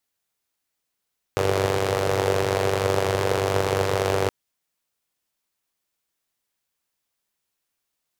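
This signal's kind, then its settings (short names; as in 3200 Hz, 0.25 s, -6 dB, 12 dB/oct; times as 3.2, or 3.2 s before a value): four-cylinder engine model, steady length 2.92 s, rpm 2900, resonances 120/440 Hz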